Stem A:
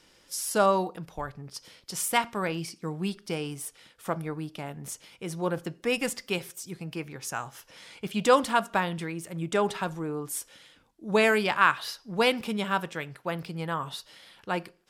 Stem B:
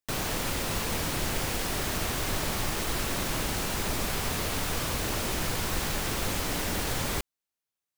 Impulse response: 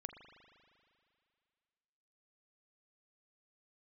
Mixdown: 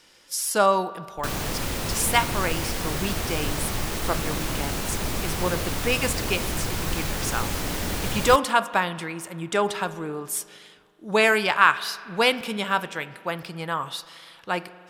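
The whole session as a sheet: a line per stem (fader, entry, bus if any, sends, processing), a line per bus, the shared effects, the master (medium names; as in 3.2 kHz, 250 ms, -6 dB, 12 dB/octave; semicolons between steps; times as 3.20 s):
+2.5 dB, 0.00 s, send -3 dB, bass shelf 440 Hz -10.5 dB
+0.5 dB, 1.15 s, no send, none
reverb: on, RT60 2.4 s, pre-delay 39 ms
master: bass shelf 340 Hz +3.5 dB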